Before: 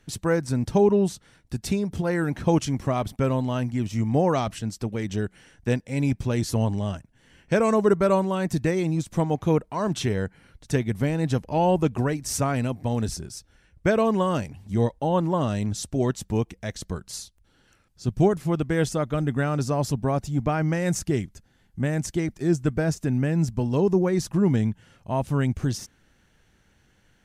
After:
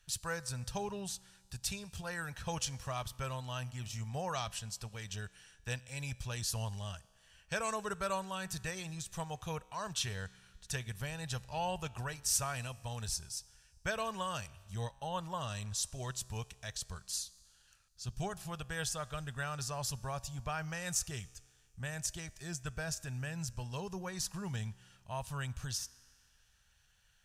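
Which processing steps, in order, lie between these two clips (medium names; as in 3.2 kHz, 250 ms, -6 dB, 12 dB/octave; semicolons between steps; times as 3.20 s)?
amplifier tone stack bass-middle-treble 10-0-10; band-stop 2.1 kHz, Q 5.6; feedback comb 63 Hz, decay 1.8 s, harmonics all, mix 40%; trim +3 dB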